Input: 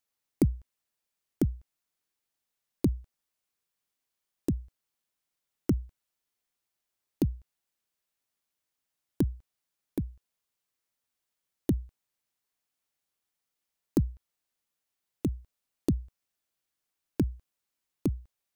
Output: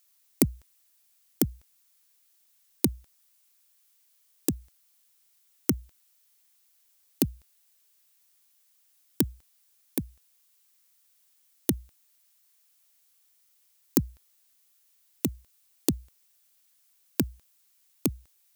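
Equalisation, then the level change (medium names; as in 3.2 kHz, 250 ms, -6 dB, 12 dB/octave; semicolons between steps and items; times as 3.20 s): tilt EQ +3.5 dB/octave; +7.0 dB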